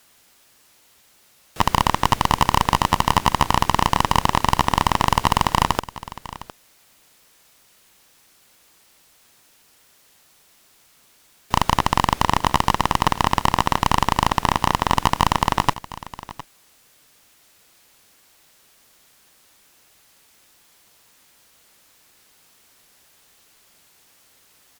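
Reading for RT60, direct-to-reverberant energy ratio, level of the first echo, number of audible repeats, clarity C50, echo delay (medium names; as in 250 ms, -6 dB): no reverb, no reverb, -17.0 dB, 1, no reverb, 709 ms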